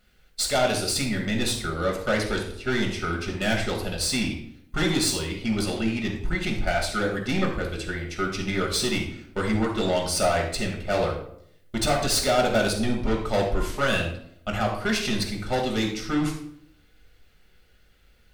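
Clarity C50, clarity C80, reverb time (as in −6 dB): 5.5 dB, 9.0 dB, 0.70 s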